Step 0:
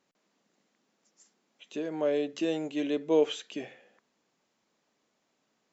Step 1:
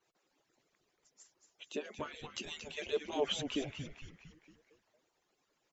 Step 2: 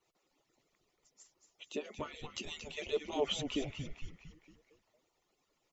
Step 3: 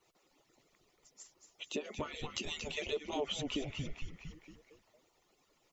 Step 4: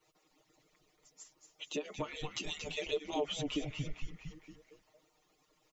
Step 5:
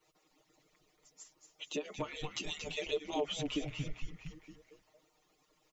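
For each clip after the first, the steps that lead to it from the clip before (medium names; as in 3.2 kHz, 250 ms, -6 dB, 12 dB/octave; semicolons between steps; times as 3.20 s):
harmonic-percussive separation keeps percussive; frequency-shifting echo 229 ms, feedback 48%, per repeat -150 Hz, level -8 dB; trim +1 dB
bass shelf 60 Hz +11 dB; band-stop 1.6 kHz, Q 5.6
compression 3:1, threshold -42 dBFS, peak gain reduction 11.5 dB; trim +6 dB
comb 6.5 ms, depth 86%; trim -2.5 dB
rattle on loud lows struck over -39 dBFS, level -41 dBFS; hum notches 60/120 Hz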